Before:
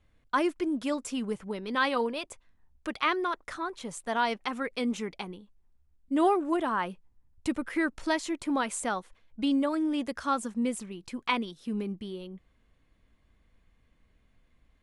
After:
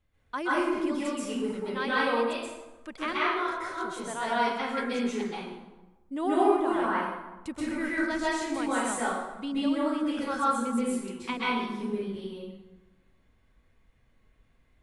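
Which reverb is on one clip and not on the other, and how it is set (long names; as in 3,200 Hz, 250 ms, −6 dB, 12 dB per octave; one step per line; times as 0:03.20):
dense smooth reverb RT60 1.1 s, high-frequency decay 0.65×, pre-delay 115 ms, DRR −9 dB
level −7.5 dB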